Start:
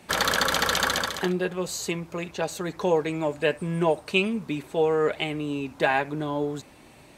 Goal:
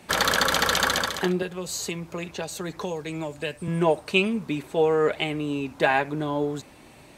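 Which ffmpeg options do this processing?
ffmpeg -i in.wav -filter_complex "[0:a]asettb=1/sr,asplit=3[link_01][link_02][link_03];[link_01]atrim=end=1.424[link_04];[link_02]atrim=start=1.42:end=3.68,asetpts=PTS-STARTPTS,afade=type=in:duration=0.004:curve=qsin,afade=type=out:start_time=2.256:duration=0.004:curve=qsin,acrossover=split=140|3000[link_05][link_06][link_07];[link_06]acompressor=threshold=-31dB:ratio=6[link_08];[link_05][link_08][link_07]amix=inputs=3:normalize=0[link_09];[link_03]atrim=start=3.676[link_10];[link_04][link_09]acrossfade=duration=0.004:curve1=hsin:curve2=qsin[link_11];[link_11][link_10]acrossfade=duration=0.004:curve1=qsin:curve2=hsin,volume=1.5dB" out.wav

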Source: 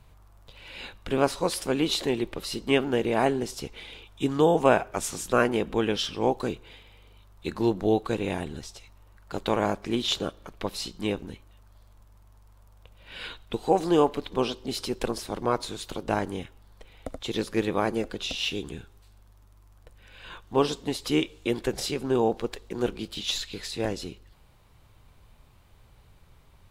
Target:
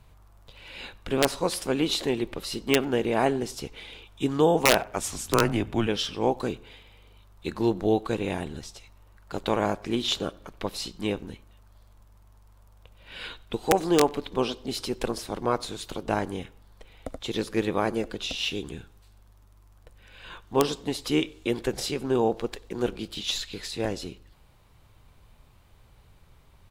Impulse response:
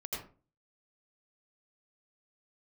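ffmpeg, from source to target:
-filter_complex "[0:a]aeval=exprs='(mod(2.82*val(0)+1,2)-1)/2.82':channel_layout=same,asplit=2[link_01][link_02];[link_02]adelay=95,lowpass=frequency=2100:poles=1,volume=-23.5dB,asplit=2[link_03][link_04];[link_04]adelay=95,lowpass=frequency=2100:poles=1,volume=0.35[link_05];[link_01][link_03][link_05]amix=inputs=3:normalize=0,asettb=1/sr,asplit=3[link_06][link_07][link_08];[link_06]atrim=end=5.034[link_09];[link_07]atrim=start=5.03:end=5.87,asetpts=PTS-STARTPTS,afade=type=in:duration=0.004:curve=qsin,afade=type=out:start_time=0.836:duration=0.004:curve=qsin,afreqshift=-110[link_10];[link_08]atrim=start=5.866[link_11];[link_09][link_10]acrossfade=duration=0.004:curve1=hsin:curve2=qsin[link_12];[link_12][link_11]acrossfade=duration=0.004:curve1=qsin:curve2=hsin"

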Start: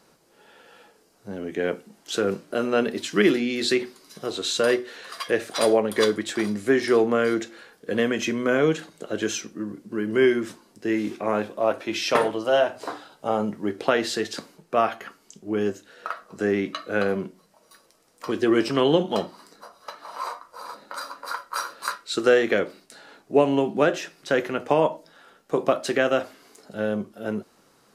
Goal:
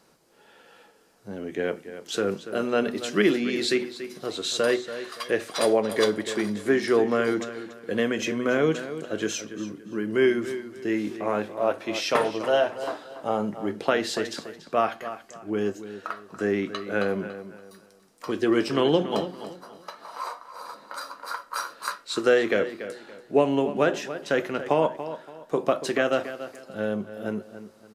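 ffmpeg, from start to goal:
ffmpeg -i in.wav -filter_complex "[0:a]asplit=2[link_01][link_02];[link_02]adelay=285,lowpass=frequency=4700:poles=1,volume=-12dB,asplit=2[link_03][link_04];[link_04]adelay=285,lowpass=frequency=4700:poles=1,volume=0.31,asplit=2[link_05][link_06];[link_06]adelay=285,lowpass=frequency=4700:poles=1,volume=0.31[link_07];[link_01][link_03][link_05][link_07]amix=inputs=4:normalize=0,volume=-2dB" out.wav

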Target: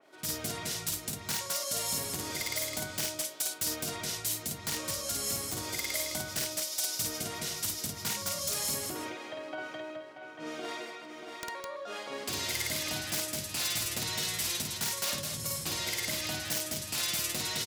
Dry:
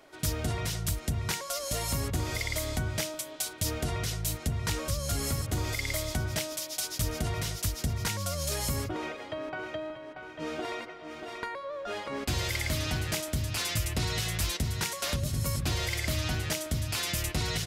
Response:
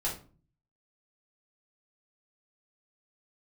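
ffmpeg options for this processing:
-filter_complex "[0:a]highpass=190,aeval=exprs='(mod(11.9*val(0)+1,2)-1)/11.9':channel_layout=same,asplit=2[link_01][link_02];[link_02]aecho=0:1:52.48|209.9:0.794|0.562[link_03];[link_01][link_03]amix=inputs=2:normalize=0,adynamicequalizer=threshold=0.00631:dfrequency=3200:dqfactor=0.7:tfrequency=3200:tqfactor=0.7:attack=5:release=100:ratio=0.375:range=3:mode=boostabove:tftype=highshelf,volume=-6dB"

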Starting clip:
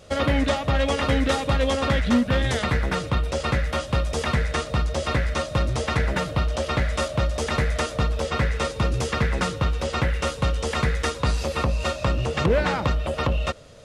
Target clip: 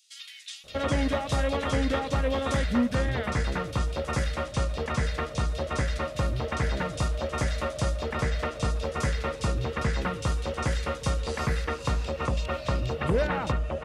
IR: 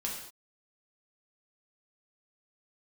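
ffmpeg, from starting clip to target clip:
-filter_complex "[0:a]acrossover=split=3000[link_01][link_02];[link_01]adelay=640[link_03];[link_03][link_02]amix=inputs=2:normalize=0,volume=-4.5dB"

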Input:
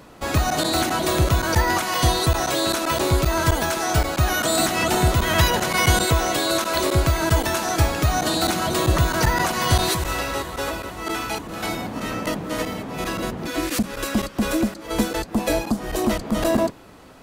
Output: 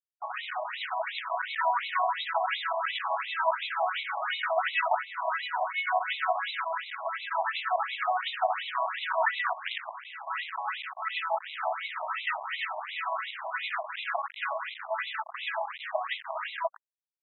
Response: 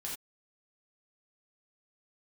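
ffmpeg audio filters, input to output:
-filter_complex "[0:a]dynaudnorm=framelen=410:gausssize=9:maxgain=9dB,highpass=frequency=220:width=0.5412,highpass=frequency=220:width=1.3066,aemphasis=mode=reproduction:type=50fm,aecho=1:1:145|290|435:0.133|0.0547|0.0224,acrossover=split=1100[link_01][link_02];[link_01]aeval=exprs='val(0)*(1-0.7/2+0.7/2*cos(2*PI*8.9*n/s))':channel_layout=same[link_03];[link_02]aeval=exprs='val(0)*(1-0.7/2-0.7/2*cos(2*PI*8.9*n/s))':channel_layout=same[link_04];[link_03][link_04]amix=inputs=2:normalize=0,acrusher=bits=4:mix=0:aa=0.000001,asettb=1/sr,asplit=3[link_05][link_06][link_07];[link_05]atrim=end=4.964[link_08];[link_06]atrim=start=4.96:end=5.97,asetpts=PTS-STARTPTS,afade=type=in:duration=0.004:curve=qsin,afade=type=out:start_time=1.006:duration=0.004:curve=qsin,equalizer=frequency=4500:width_type=o:width=2.1:gain=-12[link_09];[link_07]atrim=start=5.966[link_10];[link_08][link_09]acrossfade=duration=0.004:curve1=hsin:curve2=qsin[link_11];[link_11][link_10]acrossfade=duration=0.004:curve1=qsin:curve2=hsin,asettb=1/sr,asplit=3[link_12][link_13][link_14];[link_12]atrim=end=6.554[link_15];[link_13]atrim=start=6.55:end=7.35,asetpts=PTS-STARTPTS,afade=type=in:duration=0.004:curve=qsin,afade=type=out:start_time=0.796:duration=0.004:curve=qsin,acompressor=threshold=-22dB:ratio=5[link_16];[link_14]atrim=start=7.346[link_17];[link_15][link_16]acrossfade=duration=0.004:curve1=hsin:curve2=qsin[link_18];[link_18][link_17]acrossfade=duration=0.004:curve1=qsin:curve2=hsin,asettb=1/sr,asplit=3[link_19][link_20][link_21];[link_19]atrim=end=9.534[link_22];[link_20]atrim=start=9.53:end=10.27,asetpts=PTS-STARTPTS,afade=type=in:duration=0.004:curve=qsin,afade=type=out:start_time=0.736:duration=0.004:curve=qsin,aeval=exprs='0.282*(cos(1*acos(clip(val(0)/0.282,-1,1)))-cos(1*PI/2))+0.126*(cos(3*acos(clip(val(0)/0.282,-1,1)))-cos(3*PI/2))+0.00708*(cos(7*acos(clip(val(0)/0.282,-1,1)))-cos(7*PI/2))':channel_layout=same[link_23];[link_21]atrim=start=10.266[link_24];[link_22][link_23]acrossfade=duration=0.004:curve1=hsin:curve2=qsin[link_25];[link_25][link_24]acrossfade=duration=0.004:curve1=qsin:curve2=hsin,afftfilt=real='re*between(b*sr/1024,800*pow(2900/800,0.5+0.5*sin(2*PI*2.8*pts/sr))/1.41,800*pow(2900/800,0.5+0.5*sin(2*PI*2.8*pts/sr))*1.41)':imag='im*between(b*sr/1024,800*pow(2900/800,0.5+0.5*sin(2*PI*2.8*pts/sr))/1.41,800*pow(2900/800,0.5+0.5*sin(2*PI*2.8*pts/sr))*1.41)':win_size=1024:overlap=0.75"

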